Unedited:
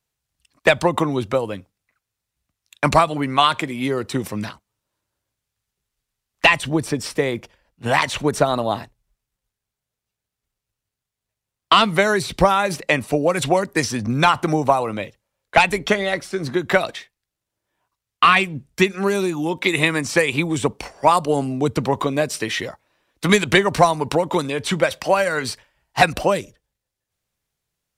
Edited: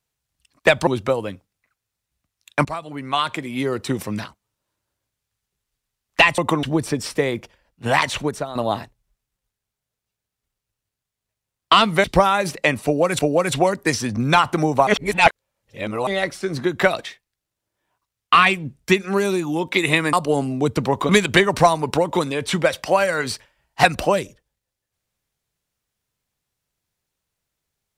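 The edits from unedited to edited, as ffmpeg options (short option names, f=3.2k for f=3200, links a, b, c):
-filter_complex "[0:a]asplit=12[a][b][c][d][e][f][g][h][i][j][k][l];[a]atrim=end=0.872[m];[b]atrim=start=1.118:end=2.9,asetpts=PTS-STARTPTS,afade=t=out:st=1.778:d=0.004:c=hsin:silence=0.11885[n];[c]atrim=start=2.9:end=6.632,asetpts=PTS-STARTPTS,afade=t=in:d=1.11:silence=0.11885[o];[d]atrim=start=0.868:end=1.122[p];[e]atrim=start=6.628:end=8.55,asetpts=PTS-STARTPTS,afade=t=out:st=1.552:d=0.37:c=qua:silence=0.237137[q];[f]atrim=start=8.55:end=12.042,asetpts=PTS-STARTPTS,afade=t=in:d=0.004:c=hsin:silence=0.237137[r];[g]atrim=start=12.288:end=13.442[s];[h]atrim=start=13.088:end=14.772[t];[i]atrim=start=14.768:end=15.972,asetpts=PTS-STARTPTS,areverse[u];[j]atrim=start=15.968:end=20.032[v];[k]atrim=start=21.128:end=22.092[w];[l]atrim=start=23.268[x];[n][o]concat=n=2:v=0:a=1[y];[m][y]acrossfade=d=0.004:c1=hsin:c2=hsin[z];[z][p]acrossfade=d=0.004:c1=hsin:c2=hsin[aa];[q][r]concat=n=2:v=0:a=1[ab];[aa][ab]acrossfade=d=0.004:c1=hsin:c2=hsin[ac];[ac][s]acrossfade=d=0.004:c1=hsin:c2=hsin[ad];[ad][t]acrossfade=d=0.004:c1=hsin:c2=hsin[ae];[ae][u]acrossfade=d=0.004:c1=hsin:c2=hsin[af];[af][v]acrossfade=d=0.004:c1=hsin:c2=hsin[ag];[ag][w]acrossfade=d=0.004:c1=hsin:c2=hsin[ah];[ah][x]acrossfade=d=0.004:c1=hsin:c2=hsin"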